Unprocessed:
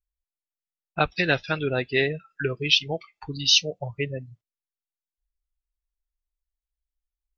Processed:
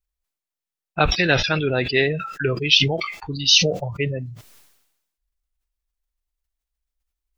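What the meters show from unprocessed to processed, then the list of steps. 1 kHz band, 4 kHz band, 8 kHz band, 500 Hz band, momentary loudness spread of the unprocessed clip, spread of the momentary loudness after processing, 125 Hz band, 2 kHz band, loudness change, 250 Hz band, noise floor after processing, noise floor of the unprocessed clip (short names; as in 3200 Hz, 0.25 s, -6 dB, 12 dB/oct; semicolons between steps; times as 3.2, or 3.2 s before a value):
+4.5 dB, +4.5 dB, n/a, +4.5 dB, 15 LU, 13 LU, +7.0 dB, +4.5 dB, +4.5 dB, +5.5 dB, under -85 dBFS, under -85 dBFS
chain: sustainer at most 58 dB/s; gain +3.5 dB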